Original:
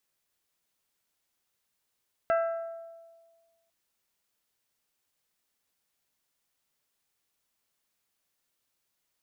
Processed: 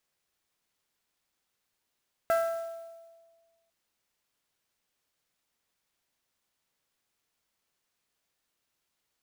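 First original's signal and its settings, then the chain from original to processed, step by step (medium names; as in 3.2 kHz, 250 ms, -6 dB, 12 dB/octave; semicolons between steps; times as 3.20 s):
glass hit bell, length 1.40 s, lowest mode 666 Hz, decay 1.55 s, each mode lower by 6.5 dB, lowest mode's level -21.5 dB
sampling jitter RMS 0.021 ms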